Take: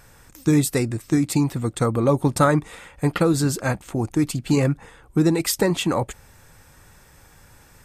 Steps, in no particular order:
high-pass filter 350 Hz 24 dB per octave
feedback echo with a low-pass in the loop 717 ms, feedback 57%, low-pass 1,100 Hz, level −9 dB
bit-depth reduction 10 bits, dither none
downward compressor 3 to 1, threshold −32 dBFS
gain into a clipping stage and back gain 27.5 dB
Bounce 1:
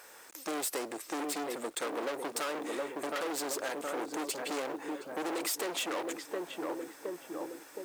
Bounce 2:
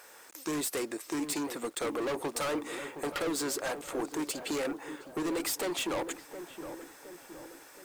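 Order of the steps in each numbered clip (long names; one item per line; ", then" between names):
feedback echo with a low-pass in the loop, then gain into a clipping stage and back, then high-pass filter, then downward compressor, then bit-depth reduction
high-pass filter, then gain into a clipping stage and back, then downward compressor, then feedback echo with a low-pass in the loop, then bit-depth reduction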